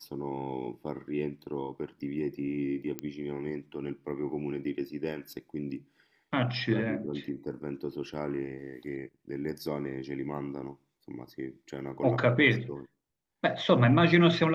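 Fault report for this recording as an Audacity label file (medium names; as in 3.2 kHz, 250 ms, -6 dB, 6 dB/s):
2.990000	2.990000	pop -18 dBFS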